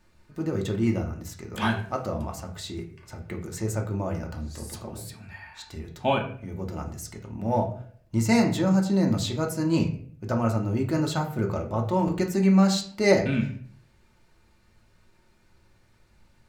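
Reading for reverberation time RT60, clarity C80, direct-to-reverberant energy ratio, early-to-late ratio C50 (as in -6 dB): 0.50 s, 13.0 dB, 1.5 dB, 9.5 dB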